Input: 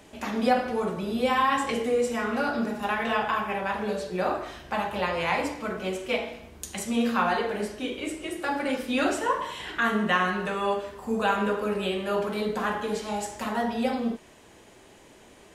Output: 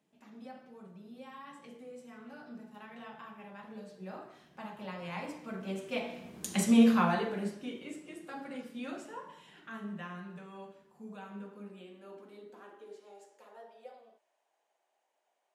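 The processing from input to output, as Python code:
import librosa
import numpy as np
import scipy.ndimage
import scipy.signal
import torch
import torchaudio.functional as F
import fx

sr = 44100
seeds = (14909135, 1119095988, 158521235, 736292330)

y = fx.doppler_pass(x, sr, speed_mps=10, closest_m=2.6, pass_at_s=6.63)
y = fx.filter_sweep_highpass(y, sr, from_hz=170.0, to_hz=710.0, start_s=11.21, end_s=14.39, q=3.6)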